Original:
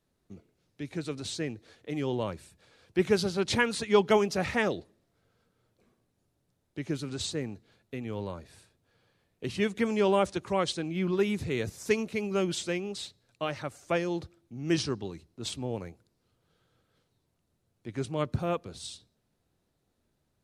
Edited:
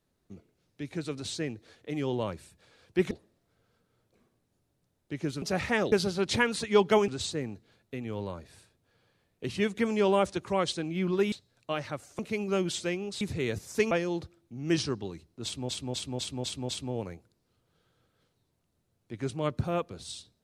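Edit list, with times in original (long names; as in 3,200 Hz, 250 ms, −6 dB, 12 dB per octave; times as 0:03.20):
0:03.11–0:04.27: swap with 0:04.77–0:07.08
0:11.32–0:12.02: swap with 0:13.04–0:13.91
0:15.44–0:15.69: repeat, 6 plays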